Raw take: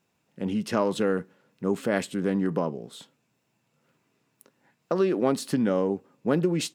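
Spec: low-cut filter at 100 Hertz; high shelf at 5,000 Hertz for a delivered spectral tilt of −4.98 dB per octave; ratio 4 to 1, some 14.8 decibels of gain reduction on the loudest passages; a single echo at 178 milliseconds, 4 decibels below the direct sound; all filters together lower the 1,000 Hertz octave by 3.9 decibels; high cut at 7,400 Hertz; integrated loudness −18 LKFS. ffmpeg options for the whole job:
ffmpeg -i in.wav -af "highpass=100,lowpass=7400,equalizer=frequency=1000:width_type=o:gain=-5.5,highshelf=frequency=5000:gain=8,acompressor=threshold=-38dB:ratio=4,aecho=1:1:178:0.631,volume=21.5dB" out.wav

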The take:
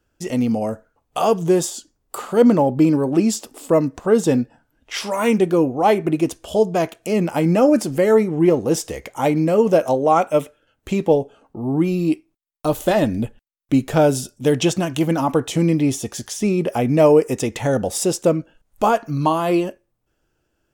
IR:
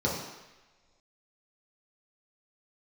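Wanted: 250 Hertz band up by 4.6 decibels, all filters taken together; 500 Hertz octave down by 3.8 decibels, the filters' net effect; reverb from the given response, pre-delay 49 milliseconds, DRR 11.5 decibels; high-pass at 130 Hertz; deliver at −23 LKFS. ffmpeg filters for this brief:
-filter_complex "[0:a]highpass=130,equalizer=frequency=250:width_type=o:gain=9,equalizer=frequency=500:width_type=o:gain=-8,asplit=2[link_01][link_02];[1:a]atrim=start_sample=2205,adelay=49[link_03];[link_02][link_03]afir=irnorm=-1:irlink=0,volume=-22dB[link_04];[link_01][link_04]amix=inputs=2:normalize=0,volume=-6.5dB"

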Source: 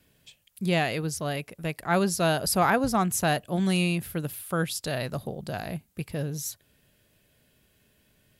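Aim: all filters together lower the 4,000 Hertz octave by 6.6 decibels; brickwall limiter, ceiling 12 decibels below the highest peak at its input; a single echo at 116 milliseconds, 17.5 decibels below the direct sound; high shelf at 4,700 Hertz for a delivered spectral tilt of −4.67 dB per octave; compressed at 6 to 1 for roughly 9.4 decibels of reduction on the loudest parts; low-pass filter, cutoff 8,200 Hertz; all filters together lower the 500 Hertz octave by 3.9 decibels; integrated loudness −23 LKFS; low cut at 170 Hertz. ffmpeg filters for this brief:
ffmpeg -i in.wav -af "highpass=170,lowpass=8200,equalizer=frequency=500:width_type=o:gain=-5,equalizer=frequency=4000:width_type=o:gain=-6.5,highshelf=frequency=4700:gain=-5,acompressor=threshold=-30dB:ratio=6,alimiter=level_in=7dB:limit=-24dB:level=0:latency=1,volume=-7dB,aecho=1:1:116:0.133,volume=18dB" out.wav

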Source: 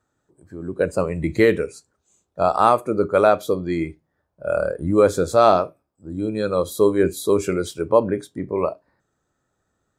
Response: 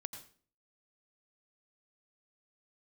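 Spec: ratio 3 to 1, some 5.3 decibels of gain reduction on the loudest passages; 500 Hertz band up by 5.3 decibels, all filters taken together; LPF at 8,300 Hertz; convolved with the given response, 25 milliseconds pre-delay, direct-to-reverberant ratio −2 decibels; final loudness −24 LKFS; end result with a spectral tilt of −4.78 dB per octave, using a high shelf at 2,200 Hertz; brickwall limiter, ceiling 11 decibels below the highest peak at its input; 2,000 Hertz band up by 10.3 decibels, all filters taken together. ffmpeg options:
-filter_complex "[0:a]lowpass=8300,equalizer=frequency=500:width_type=o:gain=5.5,equalizer=frequency=2000:width_type=o:gain=8.5,highshelf=frequency=2200:gain=8,acompressor=threshold=-11dB:ratio=3,alimiter=limit=-11dB:level=0:latency=1,asplit=2[link_01][link_02];[1:a]atrim=start_sample=2205,adelay=25[link_03];[link_02][link_03]afir=irnorm=-1:irlink=0,volume=4.5dB[link_04];[link_01][link_04]amix=inputs=2:normalize=0,volume=-5dB"

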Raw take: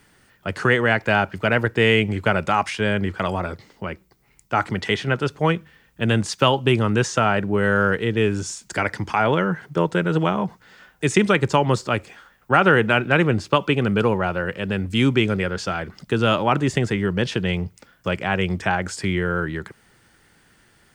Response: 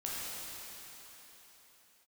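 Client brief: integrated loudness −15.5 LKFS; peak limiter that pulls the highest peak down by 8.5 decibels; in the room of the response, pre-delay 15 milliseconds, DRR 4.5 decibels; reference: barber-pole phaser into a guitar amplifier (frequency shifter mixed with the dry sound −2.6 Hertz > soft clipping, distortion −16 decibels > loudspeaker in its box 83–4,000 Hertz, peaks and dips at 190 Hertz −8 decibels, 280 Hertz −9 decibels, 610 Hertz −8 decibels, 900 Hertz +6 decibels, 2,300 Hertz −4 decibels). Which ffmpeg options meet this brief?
-filter_complex "[0:a]alimiter=limit=-11dB:level=0:latency=1,asplit=2[link_01][link_02];[1:a]atrim=start_sample=2205,adelay=15[link_03];[link_02][link_03]afir=irnorm=-1:irlink=0,volume=-8.5dB[link_04];[link_01][link_04]amix=inputs=2:normalize=0,asplit=2[link_05][link_06];[link_06]afreqshift=-2.6[link_07];[link_05][link_07]amix=inputs=2:normalize=1,asoftclip=threshold=-18dB,highpass=83,equalizer=frequency=190:width_type=q:width=4:gain=-8,equalizer=frequency=280:width_type=q:width=4:gain=-9,equalizer=frequency=610:width_type=q:width=4:gain=-8,equalizer=frequency=900:width_type=q:width=4:gain=6,equalizer=frequency=2300:width_type=q:width=4:gain=-4,lowpass=frequency=4000:width=0.5412,lowpass=frequency=4000:width=1.3066,volume=14dB"

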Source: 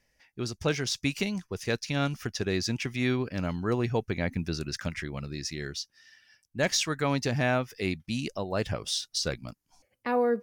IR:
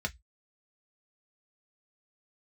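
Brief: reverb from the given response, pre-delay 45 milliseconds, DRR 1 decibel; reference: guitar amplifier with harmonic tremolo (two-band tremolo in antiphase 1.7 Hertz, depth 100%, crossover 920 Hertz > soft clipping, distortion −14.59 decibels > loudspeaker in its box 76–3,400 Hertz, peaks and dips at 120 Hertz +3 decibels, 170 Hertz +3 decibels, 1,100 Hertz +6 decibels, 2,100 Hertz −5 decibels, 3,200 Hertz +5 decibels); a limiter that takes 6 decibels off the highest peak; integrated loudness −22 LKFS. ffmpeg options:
-filter_complex "[0:a]alimiter=limit=-19.5dB:level=0:latency=1,asplit=2[link_01][link_02];[1:a]atrim=start_sample=2205,adelay=45[link_03];[link_02][link_03]afir=irnorm=-1:irlink=0,volume=-5dB[link_04];[link_01][link_04]amix=inputs=2:normalize=0,acrossover=split=920[link_05][link_06];[link_05]aeval=exprs='val(0)*(1-1/2+1/2*cos(2*PI*1.7*n/s))':channel_layout=same[link_07];[link_06]aeval=exprs='val(0)*(1-1/2-1/2*cos(2*PI*1.7*n/s))':channel_layout=same[link_08];[link_07][link_08]amix=inputs=2:normalize=0,asoftclip=threshold=-26dB,highpass=76,equalizer=frequency=120:width_type=q:width=4:gain=3,equalizer=frequency=170:width_type=q:width=4:gain=3,equalizer=frequency=1100:width_type=q:width=4:gain=6,equalizer=frequency=2100:width_type=q:width=4:gain=-5,equalizer=frequency=3200:width_type=q:width=4:gain=5,lowpass=frequency=3400:width=0.5412,lowpass=frequency=3400:width=1.3066,volume=13.5dB"

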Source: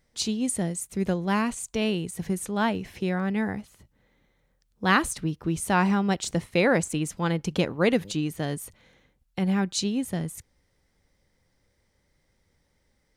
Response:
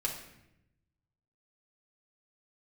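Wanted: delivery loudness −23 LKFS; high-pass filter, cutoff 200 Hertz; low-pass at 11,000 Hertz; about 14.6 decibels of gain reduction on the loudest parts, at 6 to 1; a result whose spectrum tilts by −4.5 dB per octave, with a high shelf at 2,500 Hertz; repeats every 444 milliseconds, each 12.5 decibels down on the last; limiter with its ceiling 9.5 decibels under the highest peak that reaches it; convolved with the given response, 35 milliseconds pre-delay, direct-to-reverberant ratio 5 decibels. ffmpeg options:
-filter_complex "[0:a]highpass=200,lowpass=11000,highshelf=frequency=2500:gain=-4.5,acompressor=threshold=-34dB:ratio=6,alimiter=level_in=6dB:limit=-24dB:level=0:latency=1,volume=-6dB,aecho=1:1:444|888|1332:0.237|0.0569|0.0137,asplit=2[link_01][link_02];[1:a]atrim=start_sample=2205,adelay=35[link_03];[link_02][link_03]afir=irnorm=-1:irlink=0,volume=-8.5dB[link_04];[link_01][link_04]amix=inputs=2:normalize=0,volume=16.5dB"

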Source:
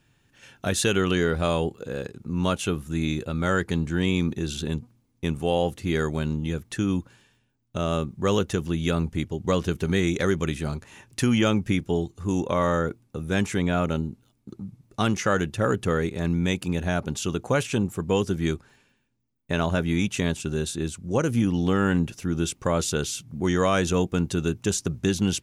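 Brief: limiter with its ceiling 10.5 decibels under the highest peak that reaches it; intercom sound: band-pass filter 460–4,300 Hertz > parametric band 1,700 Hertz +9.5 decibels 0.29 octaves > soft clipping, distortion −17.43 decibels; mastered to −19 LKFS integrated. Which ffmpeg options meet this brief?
ffmpeg -i in.wav -af "alimiter=limit=-21.5dB:level=0:latency=1,highpass=460,lowpass=4300,equalizer=frequency=1700:width_type=o:width=0.29:gain=9.5,asoftclip=threshold=-25dB,volume=18.5dB" out.wav

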